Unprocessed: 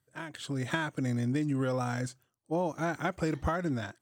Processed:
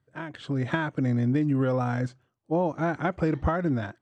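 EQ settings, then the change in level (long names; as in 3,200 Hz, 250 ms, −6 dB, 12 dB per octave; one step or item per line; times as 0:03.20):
head-to-tape spacing loss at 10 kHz 24 dB
+6.5 dB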